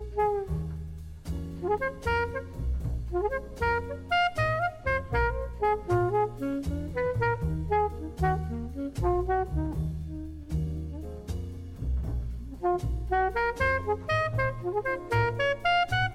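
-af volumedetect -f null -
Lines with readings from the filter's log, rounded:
mean_volume: -29.0 dB
max_volume: -14.2 dB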